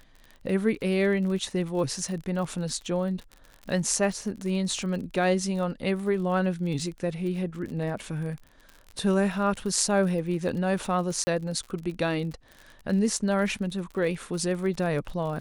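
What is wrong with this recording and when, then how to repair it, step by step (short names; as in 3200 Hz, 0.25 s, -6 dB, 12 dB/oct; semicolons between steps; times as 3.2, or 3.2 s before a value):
crackle 45/s -35 dBFS
11.24–11.27 gap 30 ms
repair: de-click; interpolate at 11.24, 30 ms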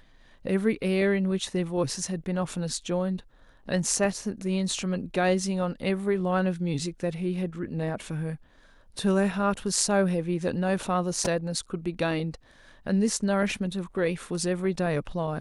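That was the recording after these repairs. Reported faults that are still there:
none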